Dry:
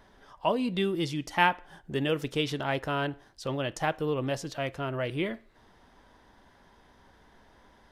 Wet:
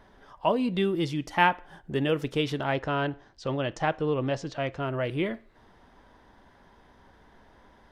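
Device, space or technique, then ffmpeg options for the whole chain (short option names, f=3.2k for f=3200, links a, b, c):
behind a face mask: -filter_complex "[0:a]asettb=1/sr,asplit=3[a][b][c];[a]atrim=end=2.724[d];[b]atrim=start=2.72:end=4.8,asetpts=PTS-STARTPTS,afade=t=in:d=0.004:c=qsin,afade=t=out:st=2.076:d=0.004:c=qsin,lowpass=f=7.3k:w=0.5412,lowpass=f=7.3k:w=1.3066[e];[c]atrim=start=4.796[f];[d][e]acrossfade=d=0.004:c1=hsin:c2=qsin[g];[g][f]acrossfade=d=0.004:c1=qsin:c2=hsin,highshelf=f=3.5k:g=-7,volume=2.5dB"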